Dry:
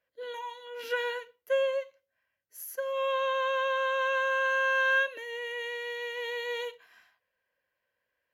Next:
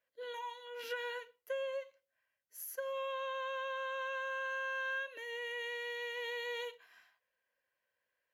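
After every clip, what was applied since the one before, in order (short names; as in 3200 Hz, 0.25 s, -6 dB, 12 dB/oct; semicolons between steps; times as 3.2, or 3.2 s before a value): compressor 6:1, threshold -31 dBFS, peak gain reduction 9.5 dB; low shelf 300 Hz -6.5 dB; gain -3.5 dB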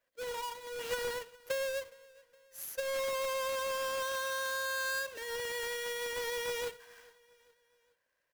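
half-waves squared off; feedback echo 0.415 s, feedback 48%, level -23.5 dB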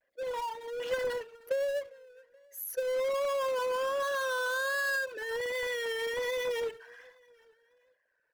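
formant sharpening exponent 2; vibrato 1.3 Hz 93 cents; gain +4 dB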